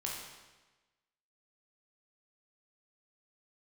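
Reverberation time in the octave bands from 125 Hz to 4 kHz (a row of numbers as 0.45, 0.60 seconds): 1.2, 1.2, 1.2, 1.2, 1.2, 1.1 seconds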